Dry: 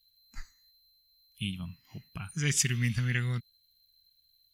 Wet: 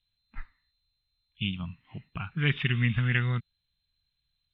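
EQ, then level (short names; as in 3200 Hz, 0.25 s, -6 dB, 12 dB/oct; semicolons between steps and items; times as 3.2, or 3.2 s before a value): dynamic EQ 1300 Hz, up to +3 dB, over -51 dBFS, Q 1.2; rippled Chebyshev low-pass 3700 Hz, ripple 3 dB; air absorption 52 m; +6.0 dB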